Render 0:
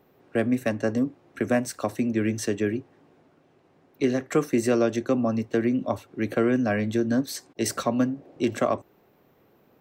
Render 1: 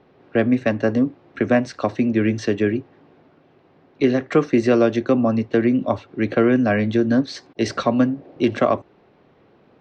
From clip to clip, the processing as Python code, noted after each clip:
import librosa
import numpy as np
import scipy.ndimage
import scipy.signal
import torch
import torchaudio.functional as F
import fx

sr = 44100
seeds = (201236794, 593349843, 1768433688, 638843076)

y = scipy.signal.sosfilt(scipy.signal.butter(4, 4700.0, 'lowpass', fs=sr, output='sos'), x)
y = y * 10.0 ** (6.0 / 20.0)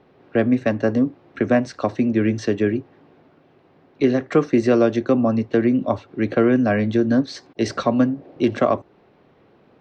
y = fx.dynamic_eq(x, sr, hz=2600.0, q=0.97, threshold_db=-40.0, ratio=4.0, max_db=-3)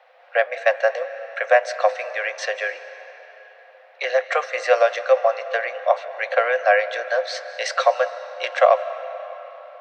y = scipy.signal.sosfilt(scipy.signal.cheby1(6, 6, 500.0, 'highpass', fs=sr, output='sos'), x)
y = fx.rev_freeverb(y, sr, rt60_s=4.2, hf_ratio=0.7, predelay_ms=115, drr_db=12.5)
y = y * 10.0 ** (8.5 / 20.0)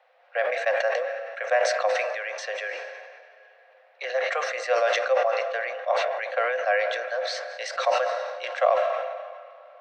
y = fx.sustainer(x, sr, db_per_s=34.0)
y = y * 10.0 ** (-8.0 / 20.0)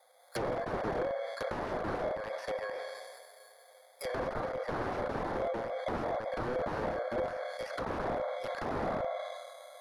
y = fx.bit_reversed(x, sr, seeds[0], block=16)
y = (np.mod(10.0 ** (22.0 / 20.0) * y + 1.0, 2.0) - 1.0) / 10.0 ** (22.0 / 20.0)
y = fx.env_lowpass_down(y, sr, base_hz=1300.0, full_db=-26.5)
y = y * 10.0 ** (-1.5 / 20.0)